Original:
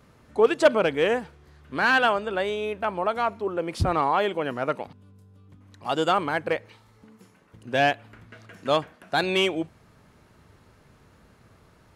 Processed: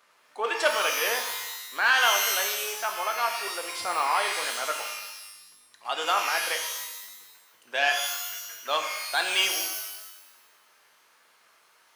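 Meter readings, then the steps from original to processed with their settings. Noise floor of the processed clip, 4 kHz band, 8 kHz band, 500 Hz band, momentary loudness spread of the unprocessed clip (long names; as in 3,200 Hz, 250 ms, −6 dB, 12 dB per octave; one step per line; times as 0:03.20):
−62 dBFS, +5.0 dB, +17.0 dB, −9.5 dB, 13 LU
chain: high-pass filter 980 Hz 12 dB per octave
reverb with rising layers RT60 1 s, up +12 semitones, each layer −2 dB, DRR 4 dB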